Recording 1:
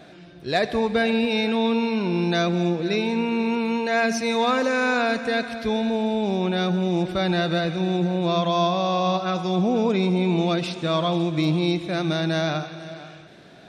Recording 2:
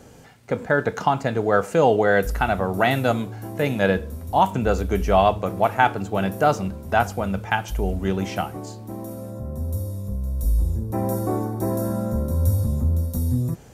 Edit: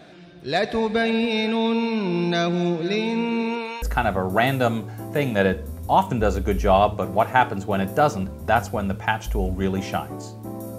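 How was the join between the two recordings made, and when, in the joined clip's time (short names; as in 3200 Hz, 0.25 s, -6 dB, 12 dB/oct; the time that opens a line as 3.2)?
recording 1
3.4–3.82 HPF 150 Hz -> 1100 Hz
3.82 switch to recording 2 from 2.26 s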